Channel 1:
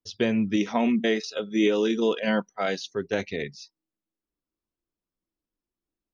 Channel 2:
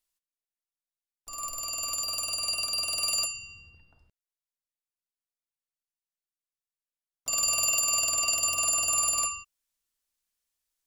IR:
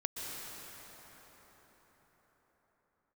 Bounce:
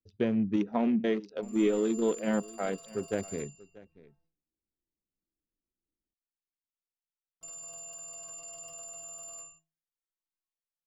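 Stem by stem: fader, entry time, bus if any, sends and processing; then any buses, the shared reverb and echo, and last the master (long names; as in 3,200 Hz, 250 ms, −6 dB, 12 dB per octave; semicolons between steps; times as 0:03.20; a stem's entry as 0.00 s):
−3.0 dB, 0.00 s, no send, echo send −20.5 dB, adaptive Wiener filter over 41 samples
+2.0 dB, 0.15 s, no send, no echo send, stiff-string resonator 160 Hz, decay 0.37 s, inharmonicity 0.008; brickwall limiter −31.5 dBFS, peak gain reduction 7 dB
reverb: not used
echo: single-tap delay 636 ms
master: high-shelf EQ 2,100 Hz −11.5 dB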